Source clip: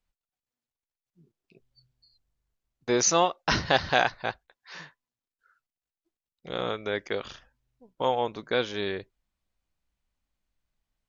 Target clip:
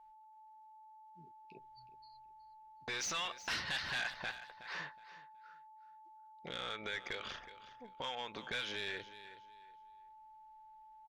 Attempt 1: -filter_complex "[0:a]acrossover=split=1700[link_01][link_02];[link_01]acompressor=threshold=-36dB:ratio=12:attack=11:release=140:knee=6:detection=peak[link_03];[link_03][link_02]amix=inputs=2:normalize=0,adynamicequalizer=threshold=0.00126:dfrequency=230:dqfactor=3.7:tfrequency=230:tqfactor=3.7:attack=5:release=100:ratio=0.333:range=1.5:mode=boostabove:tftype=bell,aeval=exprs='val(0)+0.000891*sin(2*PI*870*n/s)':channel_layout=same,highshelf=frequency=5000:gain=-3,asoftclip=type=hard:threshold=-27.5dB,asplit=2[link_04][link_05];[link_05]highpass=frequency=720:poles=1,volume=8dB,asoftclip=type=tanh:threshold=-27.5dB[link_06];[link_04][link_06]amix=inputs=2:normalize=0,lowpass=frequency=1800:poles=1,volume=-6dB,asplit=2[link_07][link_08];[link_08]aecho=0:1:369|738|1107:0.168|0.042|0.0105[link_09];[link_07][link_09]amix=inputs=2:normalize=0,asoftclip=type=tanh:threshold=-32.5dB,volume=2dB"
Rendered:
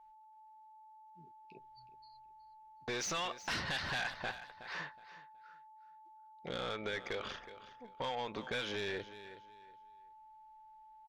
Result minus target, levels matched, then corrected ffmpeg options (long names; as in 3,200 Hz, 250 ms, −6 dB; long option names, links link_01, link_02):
downward compressor: peak gain reduction −8.5 dB
-filter_complex "[0:a]acrossover=split=1700[link_01][link_02];[link_01]acompressor=threshold=-45.5dB:ratio=12:attack=11:release=140:knee=6:detection=peak[link_03];[link_03][link_02]amix=inputs=2:normalize=0,adynamicequalizer=threshold=0.00126:dfrequency=230:dqfactor=3.7:tfrequency=230:tqfactor=3.7:attack=5:release=100:ratio=0.333:range=1.5:mode=boostabove:tftype=bell,aeval=exprs='val(0)+0.000891*sin(2*PI*870*n/s)':channel_layout=same,highshelf=frequency=5000:gain=-3,asoftclip=type=hard:threshold=-27.5dB,asplit=2[link_04][link_05];[link_05]highpass=frequency=720:poles=1,volume=8dB,asoftclip=type=tanh:threshold=-27.5dB[link_06];[link_04][link_06]amix=inputs=2:normalize=0,lowpass=frequency=1800:poles=1,volume=-6dB,asplit=2[link_07][link_08];[link_08]aecho=0:1:369|738|1107:0.168|0.042|0.0105[link_09];[link_07][link_09]amix=inputs=2:normalize=0,asoftclip=type=tanh:threshold=-32.5dB,volume=2dB"